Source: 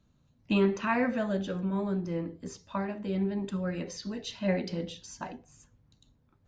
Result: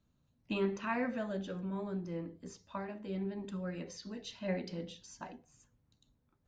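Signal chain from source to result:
mains-hum notches 50/100/150/200 Hz
level −7 dB

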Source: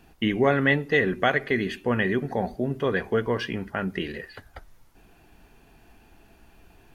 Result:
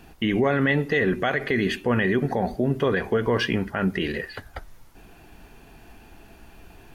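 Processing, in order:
brickwall limiter −19.5 dBFS, peak gain reduction 10 dB
level +6.5 dB

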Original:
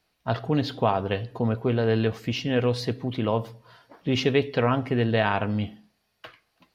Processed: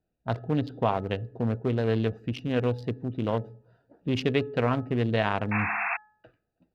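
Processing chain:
adaptive Wiener filter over 41 samples
sound drawn into the spectrogram noise, 0:05.51–0:05.97, 670–2,700 Hz −27 dBFS
hum removal 425.9 Hz, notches 4
level −2 dB

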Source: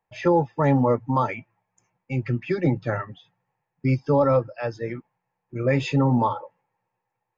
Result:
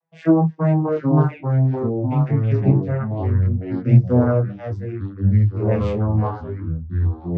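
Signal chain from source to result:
vocoder with a gliding carrier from E3, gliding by −9 semitones
delay with pitch and tempo change per echo 726 ms, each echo −3 semitones, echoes 3
micro pitch shift up and down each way 10 cents
level +7.5 dB

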